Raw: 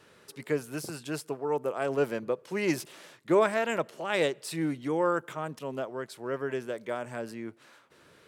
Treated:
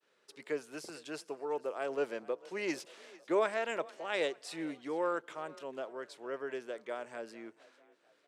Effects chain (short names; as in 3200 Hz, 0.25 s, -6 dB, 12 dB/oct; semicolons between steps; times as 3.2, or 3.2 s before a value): expander -51 dBFS; BPF 350–7400 Hz; bell 1100 Hz -2 dB 1.5 oct; frequency-shifting echo 0.449 s, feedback 47%, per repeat +33 Hz, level -21.5 dB; gain -4.5 dB